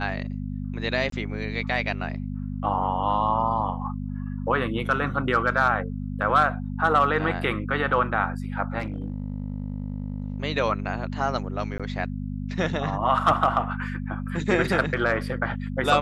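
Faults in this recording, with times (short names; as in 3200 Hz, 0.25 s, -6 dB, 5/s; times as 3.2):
hum 50 Hz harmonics 5 -31 dBFS
1.1–1.12 gap 23 ms
8.8–10.42 clipped -24.5 dBFS
11.78–11.8 gap 16 ms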